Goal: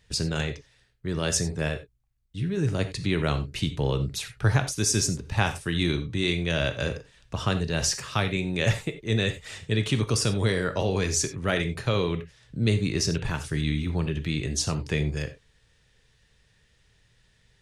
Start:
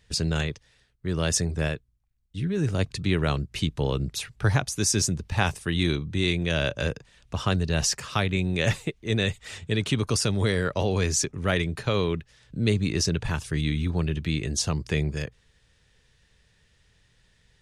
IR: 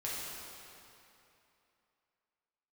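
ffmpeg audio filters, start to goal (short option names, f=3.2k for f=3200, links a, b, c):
-filter_complex "[0:a]asplit=2[a][b];[1:a]atrim=start_sample=2205,atrim=end_sample=4410[c];[b][c]afir=irnorm=-1:irlink=0,volume=-4.5dB[d];[a][d]amix=inputs=2:normalize=0,volume=-3.5dB"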